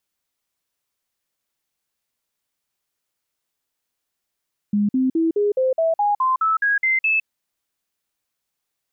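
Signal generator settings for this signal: stepped sine 206 Hz up, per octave 3, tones 12, 0.16 s, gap 0.05 s -15.5 dBFS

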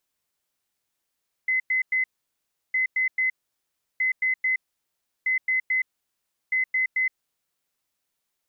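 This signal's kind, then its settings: beep pattern sine 2040 Hz, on 0.12 s, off 0.10 s, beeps 3, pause 0.70 s, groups 5, -20 dBFS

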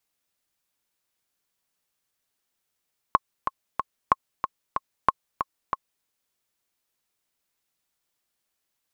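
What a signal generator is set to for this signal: metronome 186 bpm, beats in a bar 3, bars 3, 1080 Hz, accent 8 dB -3.5 dBFS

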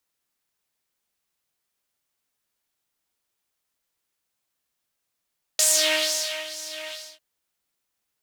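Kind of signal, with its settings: synth patch with filter wobble D#5, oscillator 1 triangle, interval -12 st, noise -6.5 dB, filter bandpass, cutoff 3000 Hz, Q 2.4, filter envelope 1 oct, attack 2.5 ms, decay 0.86 s, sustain -16.5 dB, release 0.28 s, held 1.32 s, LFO 2.2 Hz, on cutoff 0.6 oct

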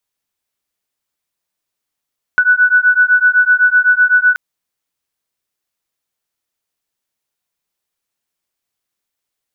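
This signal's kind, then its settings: beating tones 1480 Hz, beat 7.9 Hz, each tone -11 dBFS 1.98 s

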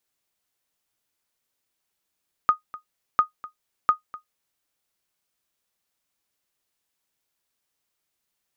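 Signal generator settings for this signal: sonar ping 1240 Hz, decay 0.12 s, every 0.70 s, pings 3, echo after 0.25 s, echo -19 dB -8.5 dBFS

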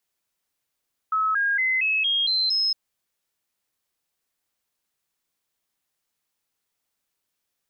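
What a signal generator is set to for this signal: stepped sine 1290 Hz up, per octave 3, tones 7, 0.23 s, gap 0.00 s -19.5 dBFS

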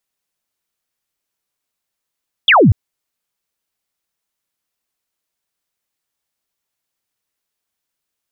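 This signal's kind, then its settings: laser zap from 3600 Hz, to 80 Hz, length 0.24 s sine, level -5.5 dB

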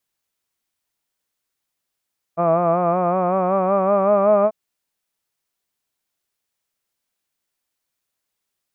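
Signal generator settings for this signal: formant-synthesis vowel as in hud, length 2.14 s, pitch 166 Hz, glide +4 st, vibrato 5.3 Hz, vibrato depth 0.65 st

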